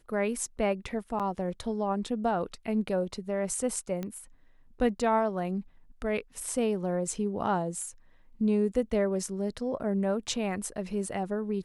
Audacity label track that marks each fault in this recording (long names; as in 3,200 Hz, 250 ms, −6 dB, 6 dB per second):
1.190000	1.200000	drop-out 7.2 ms
4.030000	4.030000	click −22 dBFS